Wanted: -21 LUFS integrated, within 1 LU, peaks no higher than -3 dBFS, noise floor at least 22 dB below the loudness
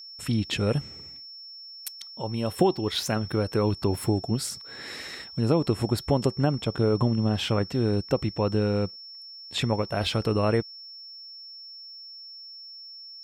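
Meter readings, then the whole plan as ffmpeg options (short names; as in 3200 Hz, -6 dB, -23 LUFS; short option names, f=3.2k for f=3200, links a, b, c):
steady tone 5400 Hz; tone level -41 dBFS; loudness -26.5 LUFS; peak -9.0 dBFS; loudness target -21.0 LUFS
-> -af "bandreject=f=5.4k:w=30"
-af "volume=5.5dB"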